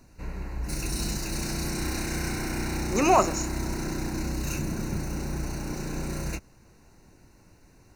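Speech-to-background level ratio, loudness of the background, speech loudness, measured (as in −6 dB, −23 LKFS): 7.0 dB, −32.0 LKFS, −25.0 LKFS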